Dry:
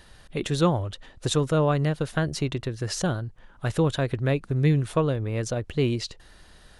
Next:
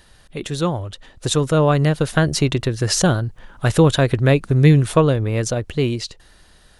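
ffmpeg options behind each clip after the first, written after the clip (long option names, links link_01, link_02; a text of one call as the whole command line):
ffmpeg -i in.wav -af "highshelf=frequency=5300:gain=4.5,dynaudnorm=framelen=220:gausssize=13:maxgain=11.5dB" out.wav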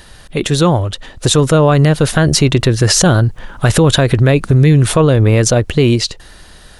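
ffmpeg -i in.wav -af "alimiter=level_in=12.5dB:limit=-1dB:release=50:level=0:latency=1,volume=-1dB" out.wav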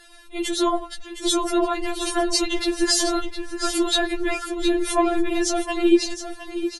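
ffmpeg -i in.wav -af "afftfilt=real='hypot(re,im)*cos(2*PI*random(0))':imag='hypot(re,im)*sin(2*PI*random(1))':win_size=512:overlap=0.75,aecho=1:1:714|1428|2142:0.316|0.0696|0.0153,afftfilt=real='re*4*eq(mod(b,16),0)':imag='im*4*eq(mod(b,16),0)':win_size=2048:overlap=0.75" out.wav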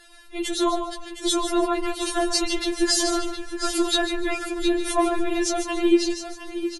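ffmpeg -i in.wav -af "aecho=1:1:147|294|441:0.316|0.0791|0.0198,volume=-1.5dB" out.wav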